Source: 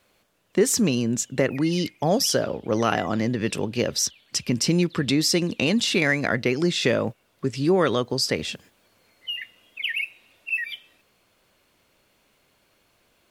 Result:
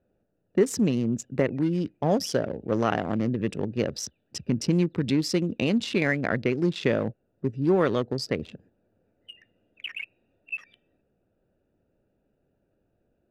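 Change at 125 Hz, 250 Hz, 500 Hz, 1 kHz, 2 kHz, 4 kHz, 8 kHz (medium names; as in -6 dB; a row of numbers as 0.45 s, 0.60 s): -1.0 dB, -1.5 dB, -2.5 dB, -3.5 dB, -6.0 dB, -10.0 dB, -11.5 dB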